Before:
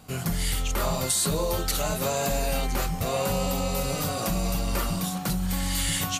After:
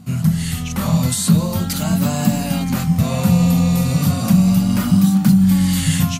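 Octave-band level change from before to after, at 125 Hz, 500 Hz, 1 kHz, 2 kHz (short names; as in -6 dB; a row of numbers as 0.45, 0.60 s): +15.0, -0.5, +2.5, +3.0 dB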